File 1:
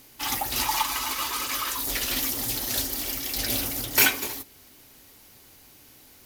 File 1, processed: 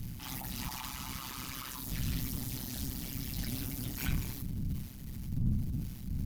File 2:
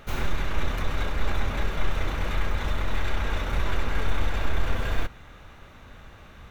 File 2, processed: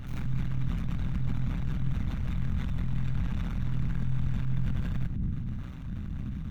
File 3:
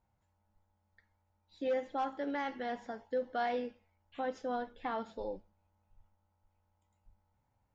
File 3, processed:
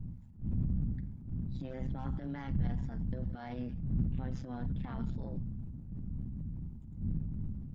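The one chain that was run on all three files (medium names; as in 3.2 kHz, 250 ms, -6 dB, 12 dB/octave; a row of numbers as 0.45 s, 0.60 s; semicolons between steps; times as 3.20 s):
wind noise 98 Hz -37 dBFS; compression 2.5:1, threshold -41 dBFS; AM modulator 130 Hz, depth 75%; transient shaper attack -9 dB, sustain +7 dB; resonant low shelf 300 Hz +12 dB, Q 1.5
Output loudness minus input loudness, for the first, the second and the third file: -13.0 LU, -3.0 LU, -1.0 LU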